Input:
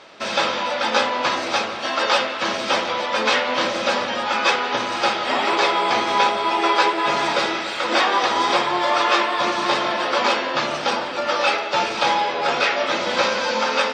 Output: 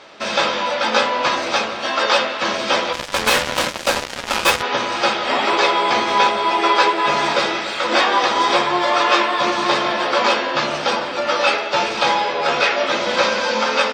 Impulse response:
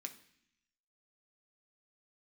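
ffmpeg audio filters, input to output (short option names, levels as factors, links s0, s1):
-filter_complex "[0:a]asplit=3[s0][s1][s2];[s0]afade=t=out:st=2.92:d=0.02[s3];[s1]acrusher=bits=2:mix=0:aa=0.5,afade=t=in:st=2.92:d=0.02,afade=t=out:st=4.61:d=0.02[s4];[s2]afade=t=in:st=4.61:d=0.02[s5];[s3][s4][s5]amix=inputs=3:normalize=0,asplit=2[s6][s7];[s7]adelay=14,volume=0.282[s8];[s6][s8]amix=inputs=2:normalize=0,volume=1.26"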